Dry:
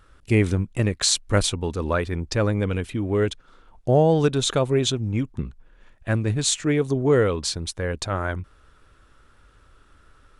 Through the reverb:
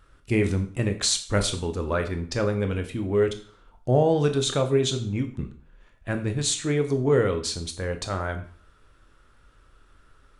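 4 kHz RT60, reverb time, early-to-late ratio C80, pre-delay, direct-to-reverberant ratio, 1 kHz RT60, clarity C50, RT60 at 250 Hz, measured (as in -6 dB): 0.45 s, 0.45 s, 16.0 dB, 7 ms, 6.0 dB, 0.50 s, 12.0 dB, 0.45 s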